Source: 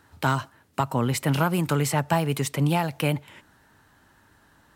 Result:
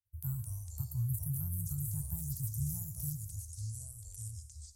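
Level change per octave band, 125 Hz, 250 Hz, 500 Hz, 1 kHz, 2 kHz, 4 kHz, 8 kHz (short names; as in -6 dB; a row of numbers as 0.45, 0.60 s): -9.5 dB, -18.5 dB, under -40 dB, under -40 dB, under -40 dB, -25.5 dB, -6.5 dB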